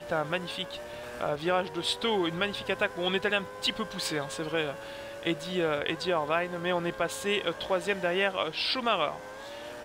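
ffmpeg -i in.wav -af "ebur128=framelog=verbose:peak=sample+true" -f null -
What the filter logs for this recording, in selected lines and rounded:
Integrated loudness:
  I:         -29.9 LUFS
  Threshold: -40.1 LUFS
Loudness range:
  LRA:         1.8 LU
  Threshold: -50.0 LUFS
  LRA low:   -30.8 LUFS
  LRA high:  -29.0 LUFS
Sample peak:
  Peak:      -13.1 dBFS
True peak:
  Peak:      -13.1 dBFS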